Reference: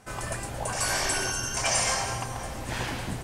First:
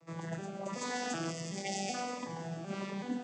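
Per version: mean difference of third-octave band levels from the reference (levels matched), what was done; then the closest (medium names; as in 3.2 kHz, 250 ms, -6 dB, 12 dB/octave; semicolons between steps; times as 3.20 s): 9.5 dB: vocoder on a broken chord minor triad, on E3, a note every 377 ms; spectral selection erased 1.31–1.95 s, 840–1800 Hz; on a send: echo whose repeats swap between lows and highs 159 ms, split 1.1 kHz, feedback 66%, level -11 dB; on the sum: Shepard-style phaser falling 1.4 Hz; trim -5.5 dB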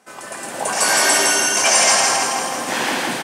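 6.0 dB: high-pass 200 Hz 24 dB/octave; bass shelf 420 Hz -2.5 dB; level rider gain up to 11.5 dB; on a send: feedback delay 163 ms, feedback 55%, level -3 dB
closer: second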